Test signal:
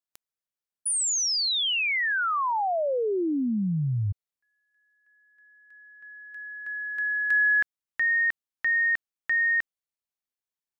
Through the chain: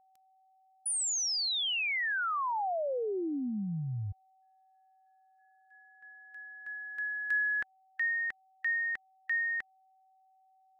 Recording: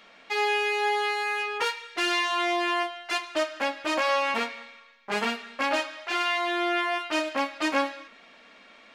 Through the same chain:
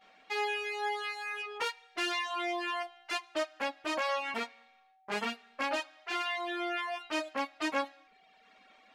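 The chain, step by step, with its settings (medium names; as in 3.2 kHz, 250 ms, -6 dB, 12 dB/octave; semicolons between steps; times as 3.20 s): expander -51 dBFS, range -15 dB; reverb removal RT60 1 s; whistle 760 Hz -58 dBFS; trim -6 dB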